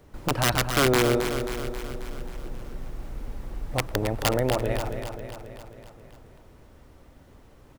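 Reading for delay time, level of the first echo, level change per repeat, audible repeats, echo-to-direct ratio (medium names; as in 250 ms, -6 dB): 268 ms, -8.0 dB, -4.5 dB, 6, -6.0 dB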